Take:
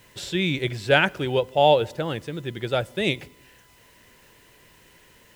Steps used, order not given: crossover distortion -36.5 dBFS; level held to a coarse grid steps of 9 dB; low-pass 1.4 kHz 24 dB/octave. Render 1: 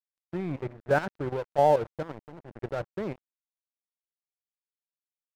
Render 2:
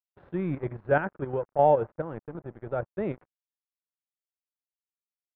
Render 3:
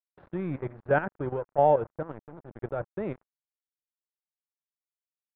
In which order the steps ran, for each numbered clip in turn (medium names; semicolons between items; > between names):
level held to a coarse grid > low-pass > crossover distortion; crossover distortion > level held to a coarse grid > low-pass; level held to a coarse grid > crossover distortion > low-pass